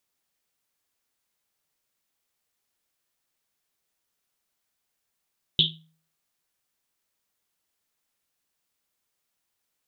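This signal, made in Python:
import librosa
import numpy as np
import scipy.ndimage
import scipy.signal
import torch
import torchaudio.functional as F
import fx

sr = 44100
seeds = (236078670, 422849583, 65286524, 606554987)

y = fx.risset_drum(sr, seeds[0], length_s=1.1, hz=160.0, decay_s=0.5, noise_hz=3400.0, noise_width_hz=780.0, noise_pct=75)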